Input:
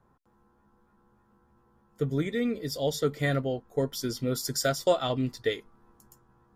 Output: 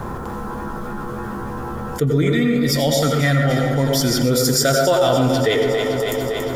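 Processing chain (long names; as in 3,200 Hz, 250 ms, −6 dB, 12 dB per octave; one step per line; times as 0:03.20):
0:02.25–0:04.11: parametric band 430 Hz −13.5 dB 0.44 octaves
delay that swaps between a low-pass and a high-pass 141 ms, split 1,400 Hz, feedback 72%, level −8 dB
on a send at −4 dB: convolution reverb RT60 0.60 s, pre-delay 77 ms
on the sum: envelope flattener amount 70%
level +5 dB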